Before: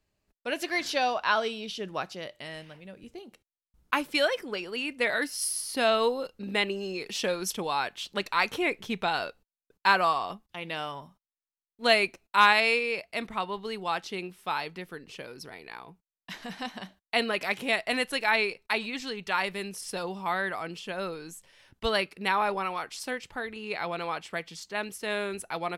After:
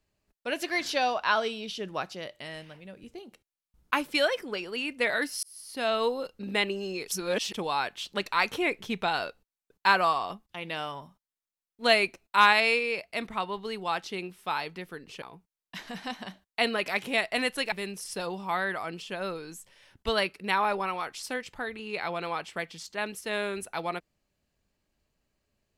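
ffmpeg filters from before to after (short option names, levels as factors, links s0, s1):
-filter_complex "[0:a]asplit=6[s0][s1][s2][s3][s4][s5];[s0]atrim=end=5.43,asetpts=PTS-STARTPTS,afade=t=out:st=5.426:d=0.004:c=hsin[s6];[s1]atrim=start=5.43:end=7.082,asetpts=PTS-STARTPTS,afade=t=in:d=1.02:c=qsin[s7];[s2]atrim=start=7.078:end=7.542,asetpts=PTS-STARTPTS,areverse[s8];[s3]atrim=start=7.538:end=15.222[s9];[s4]atrim=start=15.768:end=18.272[s10];[s5]atrim=start=19.488[s11];[s6][s7]concat=n=2:v=0:a=1[s12];[s12][s8]acrossfade=d=0.004:c1=hsin:c2=hsin[s13];[s13][s9]acrossfade=d=0.004:c1=hsin:c2=hsin[s14];[s14][s10]acrossfade=d=0.004:c1=hsin:c2=hsin[s15];[s15][s11]acrossfade=d=0.004:c1=hsin:c2=hsin"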